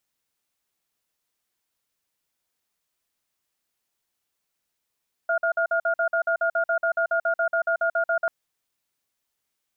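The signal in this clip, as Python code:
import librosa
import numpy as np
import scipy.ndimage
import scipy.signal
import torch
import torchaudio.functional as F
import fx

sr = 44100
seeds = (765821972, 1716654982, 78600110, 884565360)

y = fx.cadence(sr, length_s=2.99, low_hz=666.0, high_hz=1420.0, on_s=0.09, off_s=0.05, level_db=-22.5)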